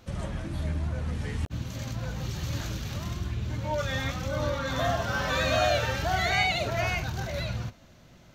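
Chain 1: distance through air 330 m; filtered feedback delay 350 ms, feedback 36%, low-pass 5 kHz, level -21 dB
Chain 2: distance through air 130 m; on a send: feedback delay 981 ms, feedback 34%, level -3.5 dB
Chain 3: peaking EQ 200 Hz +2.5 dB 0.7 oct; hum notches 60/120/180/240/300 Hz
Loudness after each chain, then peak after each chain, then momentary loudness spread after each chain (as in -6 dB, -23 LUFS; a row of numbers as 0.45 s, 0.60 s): -31.0 LUFS, -29.0 LUFS, -29.5 LUFS; -14.5 dBFS, -12.0 dBFS, -12.0 dBFS; 8 LU, 8 LU, 10 LU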